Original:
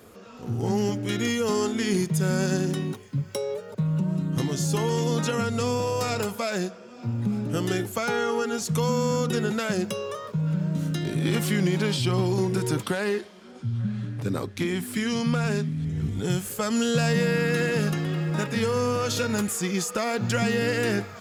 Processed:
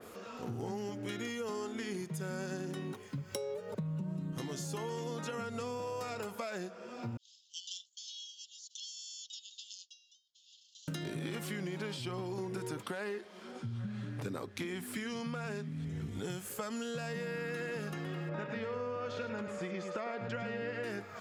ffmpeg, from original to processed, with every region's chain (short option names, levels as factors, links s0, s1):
-filter_complex "[0:a]asettb=1/sr,asplit=3[s0][s1][s2];[s0]atrim=end=3.324[s3];[s1]atrim=start=3.32:end=4.33,asetpts=PTS-STARTPTS,afade=t=in:d=0.004:c=qsin,afade=t=out:st=1.006:d=0.004:c=qsin,lowshelf=f=250:g=9,bandreject=f=1400:w=26[s4];[s2]atrim=start=4.326[s5];[s3][s4]acrossfade=d=0.004:c1=hsin:c2=qsin[s6];[s6][s5]acrossfade=d=0.004:c1=qsin:c2=hsin,asettb=1/sr,asplit=3[s7][s8][s9];[s7]atrim=end=7.174[s10];[s8]atrim=start=7.17:end=10.88,asetpts=PTS-STARTPTS,afade=t=in:d=0.004:c=qsin,afade=t=out:st=3.706:d=0.004:c=qsin,agate=range=0.0224:threshold=0.0794:ratio=3:release=100:detection=peak,asuperpass=centerf=4700:order=20:qfactor=1.1[s11];[s9]atrim=start=10.876[s12];[s10][s11]acrossfade=d=0.004:c1=hsin:c2=qsin[s13];[s13][s12]acrossfade=d=0.004:c1=qsin:c2=hsin,asettb=1/sr,asplit=3[s14][s15][s16];[s14]atrim=end=18.294[s17];[s15]atrim=start=18.29:end=20.84,asetpts=PTS-STARTPTS,afade=t=in:d=0.004:c=qsin,afade=t=out:st=2.546:d=0.004:c=qsin,lowpass=3300,aeval=exprs='val(0)+0.0224*sin(2*PI*580*n/s)':c=same,aecho=1:1:104:0.398,atrim=end_sample=112455[s18];[s16]atrim=start=20.836[s19];[s17][s18]acrossfade=d=0.004:c1=hsin:c2=qsin[s20];[s20][s19]acrossfade=d=0.004:c1=qsin:c2=hsin,lowshelf=f=210:g=-10.5,acompressor=threshold=0.0126:ratio=6,adynamicequalizer=threshold=0.00126:dfrequency=2700:dqfactor=0.7:tfrequency=2700:tqfactor=0.7:attack=5:release=100:ratio=0.375:range=3:mode=cutabove:tftype=highshelf,volume=1.19"